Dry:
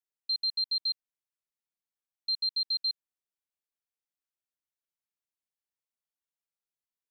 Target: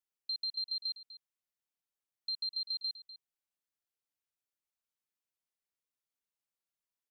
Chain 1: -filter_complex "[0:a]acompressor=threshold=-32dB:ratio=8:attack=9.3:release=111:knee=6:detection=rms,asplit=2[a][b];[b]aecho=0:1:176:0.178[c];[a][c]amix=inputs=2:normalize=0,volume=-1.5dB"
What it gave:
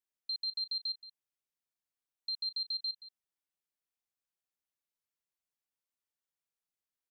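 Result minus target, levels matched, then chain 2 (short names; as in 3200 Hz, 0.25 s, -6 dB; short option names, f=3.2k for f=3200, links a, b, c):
echo 73 ms early
-filter_complex "[0:a]acompressor=threshold=-32dB:ratio=8:attack=9.3:release=111:knee=6:detection=rms,asplit=2[a][b];[b]aecho=0:1:249:0.178[c];[a][c]amix=inputs=2:normalize=0,volume=-1.5dB"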